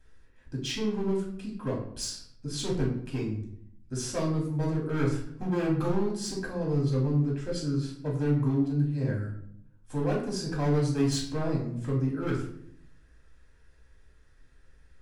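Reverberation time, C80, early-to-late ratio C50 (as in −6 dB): 0.70 s, 9.5 dB, 5.5 dB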